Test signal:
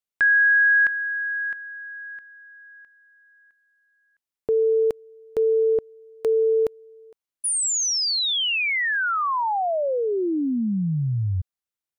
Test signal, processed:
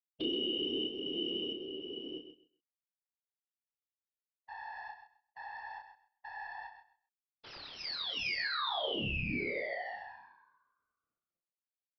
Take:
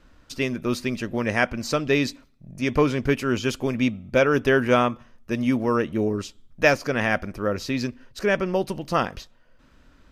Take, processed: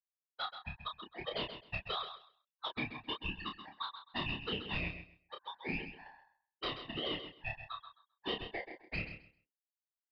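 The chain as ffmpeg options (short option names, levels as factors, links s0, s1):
-filter_complex "[0:a]afftfilt=real='re*gte(hypot(re,im),0.141)':imag='im*gte(hypot(re,im),0.141)':win_size=1024:overlap=0.75,highpass=f=900:w=0.5412,highpass=f=900:w=1.3066,adynamicequalizer=threshold=0.0282:dfrequency=1600:dqfactor=5.6:tfrequency=1600:tqfactor=5.6:attack=5:release=100:ratio=0.333:range=2:mode=cutabove:tftype=bell,acompressor=threshold=0.02:ratio=8:attack=86:release=284:knee=6:detection=rms,aeval=exprs='0.133*sin(PI/2*2.51*val(0)/0.133)':c=same,aeval=exprs='val(0)*sin(2*PI*1300*n/s)':c=same,adynamicsmooth=sensitivity=5:basefreq=1200,afftfilt=real='hypot(re,im)*cos(2*PI*random(0))':imag='hypot(re,im)*sin(2*PI*random(1))':win_size=512:overlap=0.75,acrusher=bits=9:mode=log:mix=0:aa=0.000001,asplit=2[s0][s1];[s1]adelay=29,volume=0.562[s2];[s0][s2]amix=inputs=2:normalize=0,asplit=2[s3][s4];[s4]aecho=0:1:131|262|393:0.316|0.0601|0.0114[s5];[s3][s5]amix=inputs=2:normalize=0,aresample=11025,aresample=44100,volume=0.596"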